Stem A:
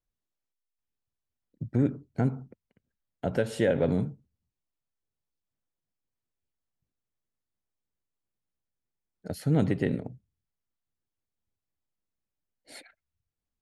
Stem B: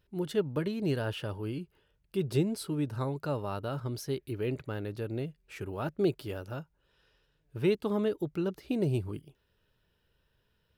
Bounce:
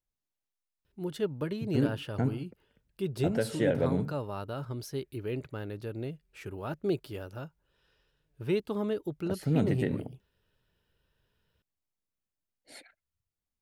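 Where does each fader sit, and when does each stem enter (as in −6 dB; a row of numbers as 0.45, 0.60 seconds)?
−3.0, −2.0 decibels; 0.00, 0.85 seconds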